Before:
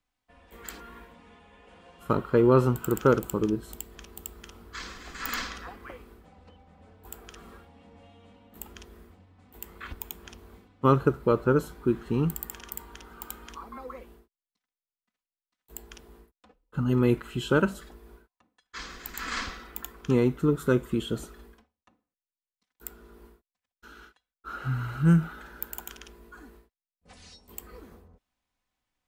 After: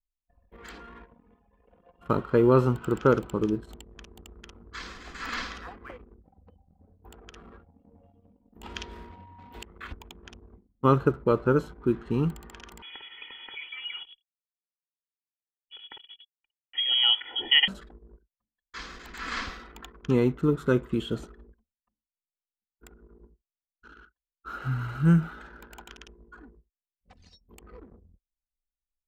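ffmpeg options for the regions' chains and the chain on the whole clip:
ffmpeg -i in.wav -filter_complex "[0:a]asettb=1/sr,asplit=3[link_01][link_02][link_03];[link_01]atrim=end=8.634[link_04];[link_02]atrim=start=8.63:end=9.63,asetpts=PTS-STARTPTS,afade=type=in:duration=0.004:curve=qsin,afade=type=out:start_time=0.996:duration=0.004:curve=qsin,equalizer=frequency=3900:width=0.45:gain=7.5,acontrast=47,aeval=exprs='val(0)+0.00355*sin(2*PI*950*n/s)':channel_layout=same[link_05];[link_03]atrim=start=9.626[link_06];[link_04][link_05]acrossfade=duration=0.004:curve1=hsin:curve2=qsin[link_07];[link_07][link_06]acrossfade=duration=0.004:curve1=qsin:curve2=hsin,asettb=1/sr,asplit=3[link_08][link_09][link_10];[link_08]atrim=end=12.824[link_11];[link_09]atrim=start=12.82:end=17.68,asetpts=PTS-STARTPTS,afade=type=in:duration=0.004:curve=qsin,afade=type=out:start_time=4.856:duration=0.004:curve=qsin,acrusher=bits=7:mix=0:aa=0.5,aecho=1:1:2:0.75,atrim=end_sample=214326,lowpass=frequency=2900:width_type=q:width=0.5098,lowpass=frequency=2900:width_type=q:width=0.6013,lowpass=frequency=2900:width_type=q:width=0.9,lowpass=frequency=2900:width_type=q:width=2.563,afreqshift=-3400[link_12];[link_10]atrim=start=17.676[link_13];[link_11][link_12]acrossfade=duration=0.004:curve1=hsin:curve2=qsin[link_14];[link_14][link_13]acrossfade=duration=0.004:curve1=qsin:curve2=hsin,acrossover=split=5600[link_15][link_16];[link_16]acompressor=threshold=-57dB:ratio=4:attack=1:release=60[link_17];[link_15][link_17]amix=inputs=2:normalize=0,anlmdn=0.01" out.wav

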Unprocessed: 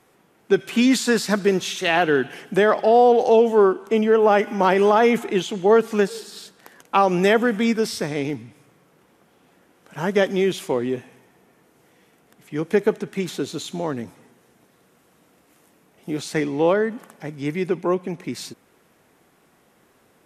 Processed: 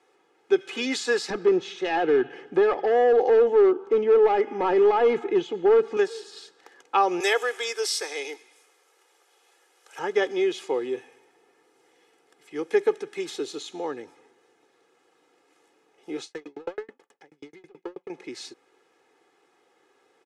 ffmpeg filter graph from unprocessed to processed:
ffmpeg -i in.wav -filter_complex "[0:a]asettb=1/sr,asplit=3[link_01][link_02][link_03];[link_01]atrim=end=1.304[link_04];[link_02]atrim=start=1.3:end=5.97,asetpts=PTS-STARTPTS,afade=type=in:duration=0.004:curve=qsin,afade=type=out:start_time=4.666:duration=0.004:curve=qsin,volume=14.5dB,asoftclip=hard,volume=-14.5dB,aemphasis=mode=reproduction:type=riaa[link_05];[link_03]atrim=start=5.966[link_06];[link_04][link_05]acrossfade=duration=0.004:curve1=hsin:curve2=qsin[link_07];[link_07][link_06]acrossfade=duration=0.004:curve1=qsin:curve2=hsin,asettb=1/sr,asplit=3[link_08][link_09][link_10];[link_08]atrim=end=7.204[link_11];[link_09]atrim=start=7.2:end=9.99,asetpts=PTS-STARTPTS,afade=type=in:duration=0.004:curve=qsin,afade=type=out:start_time=2.786:duration=0.004:curve=qsin,highpass=frequency=350:width=0.5412,highpass=frequency=350:width=1.3066,aemphasis=mode=production:type=riaa[link_12];[link_10]atrim=start=9.986[link_13];[link_11][link_12]acrossfade=duration=0.004:curve1=hsin:curve2=qsin[link_14];[link_14][link_13]acrossfade=duration=0.004:curve1=qsin:curve2=hsin,asettb=1/sr,asplit=3[link_15][link_16][link_17];[link_15]atrim=end=10.744[link_18];[link_16]atrim=start=10.74:end=13.58,asetpts=PTS-STARTPTS,afade=type=in:duration=0.004:curve=qsin,afade=type=out:start_time=2.836:duration=0.004:curve=qsin,highshelf=frequency=6800:gain=8.5,bandreject=frequency=6600:width=20[link_19];[link_17]atrim=start=13.576[link_20];[link_18][link_19]acrossfade=duration=0.004:curve1=hsin:curve2=qsin[link_21];[link_21][link_20]acrossfade=duration=0.004:curve1=qsin:curve2=hsin,asettb=1/sr,asplit=3[link_22][link_23][link_24];[link_22]atrim=end=16.244[link_25];[link_23]atrim=start=16.24:end=18.1,asetpts=PTS-STARTPTS,afade=type=in:duration=0.004:curve=qsin,afade=type=out:start_time=1.856:duration=0.004:curve=qsin,aeval=exprs='clip(val(0),-1,0.0668)':channel_layout=same,aeval=exprs='val(0)*pow(10,-40*if(lt(mod(9.3*n/s,1),2*abs(9.3)/1000),1-mod(9.3*n/s,1)/(2*abs(9.3)/1000),(mod(9.3*n/s,1)-2*abs(9.3)/1000)/(1-2*abs(9.3)/1000))/20)':channel_layout=same[link_26];[link_24]atrim=start=18.096[link_27];[link_25][link_26]acrossfade=duration=0.004:curve1=hsin:curve2=qsin[link_28];[link_28][link_27]acrossfade=duration=0.004:curve1=qsin:curve2=hsin,lowpass=frequency=12000:width=0.5412,lowpass=frequency=12000:width=1.3066,acrossover=split=230 8000:gain=0.0708 1 0.141[link_29][link_30][link_31];[link_29][link_30][link_31]amix=inputs=3:normalize=0,aecho=1:1:2.4:0.69,volume=-6dB" out.wav

